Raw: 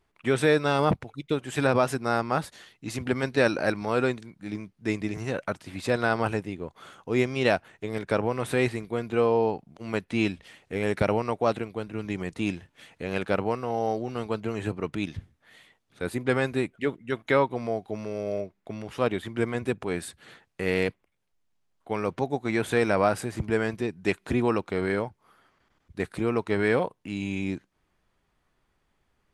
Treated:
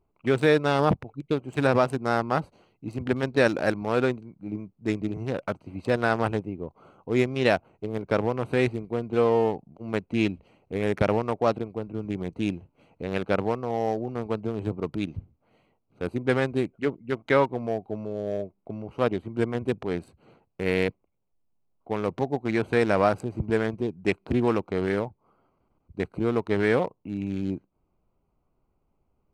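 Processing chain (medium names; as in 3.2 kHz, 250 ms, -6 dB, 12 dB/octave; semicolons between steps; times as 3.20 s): local Wiener filter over 25 samples; trim +1.5 dB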